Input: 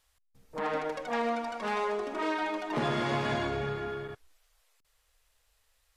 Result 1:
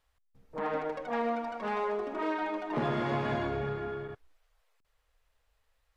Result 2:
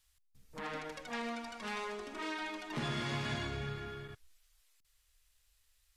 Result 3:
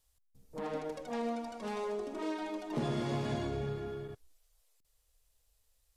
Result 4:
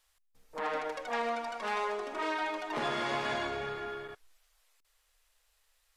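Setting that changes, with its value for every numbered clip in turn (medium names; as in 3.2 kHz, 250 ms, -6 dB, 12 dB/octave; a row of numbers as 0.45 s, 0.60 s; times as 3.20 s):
peaking EQ, frequency: 10 kHz, 600 Hz, 1.6 kHz, 120 Hz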